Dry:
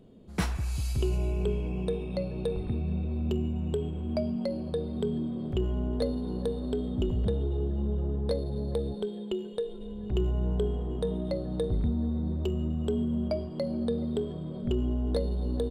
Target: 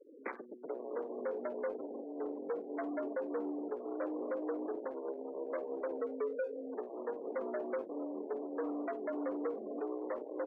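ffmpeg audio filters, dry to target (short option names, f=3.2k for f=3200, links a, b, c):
-filter_complex "[0:a]asoftclip=type=tanh:threshold=-34.5dB,highpass=f=270:t=q:w=0.5412,highpass=f=270:t=q:w=1.307,lowpass=f=2.2k:t=q:w=0.5176,lowpass=f=2.2k:t=q:w=0.7071,lowpass=f=2.2k:t=q:w=1.932,afreqshift=58,aeval=exprs='val(0)+0.000398*sin(2*PI*490*n/s)':c=same,acrossover=split=640|770[a][b][c];[b]alimiter=level_in=26dB:limit=-24dB:level=0:latency=1:release=43,volume=-26dB[d];[c]acrusher=bits=5:mode=log:mix=0:aa=0.000001[e];[a][d][e]amix=inputs=3:normalize=0,aeval=exprs='val(0)+0.0002*(sin(2*PI*60*n/s)+sin(2*PI*2*60*n/s)/2+sin(2*PI*3*60*n/s)/3+sin(2*PI*4*60*n/s)/4+sin(2*PI*5*60*n/s)/5)':c=same,afftfilt=real='re*gte(hypot(re,im),0.00631)':imag='im*gte(hypot(re,im),0.00631)':win_size=1024:overlap=0.75,equalizer=f=820:w=3.5:g=-5,asplit=2[f][g];[g]adelay=80,highpass=300,lowpass=3.4k,asoftclip=type=hard:threshold=-39dB,volume=-17dB[h];[f][h]amix=inputs=2:normalize=0,atempo=1.5,volume=4.5dB"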